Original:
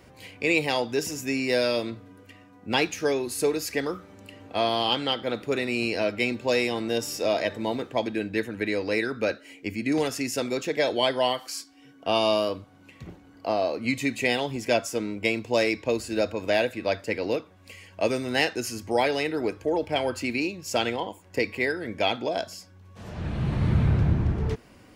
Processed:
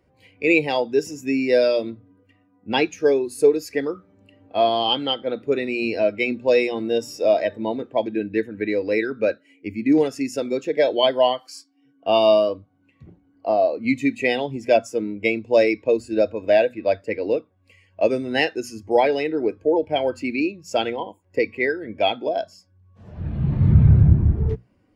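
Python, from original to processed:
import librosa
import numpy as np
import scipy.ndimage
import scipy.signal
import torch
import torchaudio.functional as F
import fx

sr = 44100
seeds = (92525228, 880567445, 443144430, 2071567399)

y = fx.hum_notches(x, sr, base_hz=60, count=4)
y = fx.spectral_expand(y, sr, expansion=1.5)
y = y * 10.0 ** (5.5 / 20.0)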